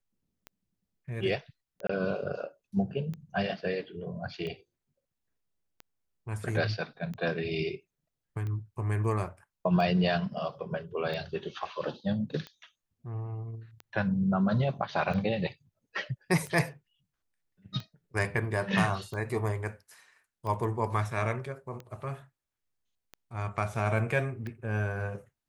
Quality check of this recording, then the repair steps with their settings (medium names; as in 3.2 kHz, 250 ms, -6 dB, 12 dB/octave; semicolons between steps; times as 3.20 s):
tick 45 rpm -27 dBFS
1.87–1.89 s: dropout 24 ms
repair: de-click; interpolate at 1.87 s, 24 ms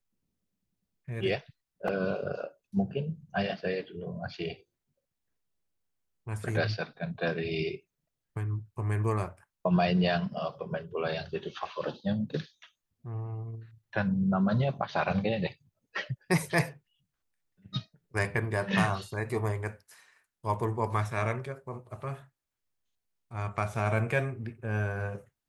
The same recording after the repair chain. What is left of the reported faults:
nothing left